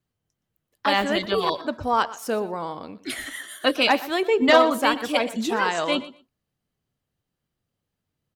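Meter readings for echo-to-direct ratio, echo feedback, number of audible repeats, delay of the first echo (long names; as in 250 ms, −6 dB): −17.0 dB, 16%, 2, 120 ms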